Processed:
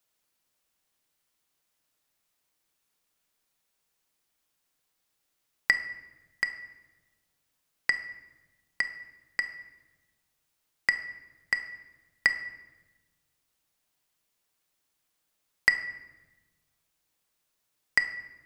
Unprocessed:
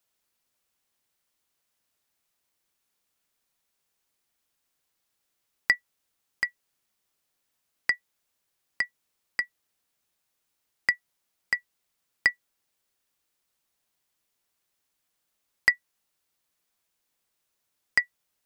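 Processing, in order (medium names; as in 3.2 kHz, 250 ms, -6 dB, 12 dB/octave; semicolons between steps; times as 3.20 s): simulated room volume 690 m³, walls mixed, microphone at 0.53 m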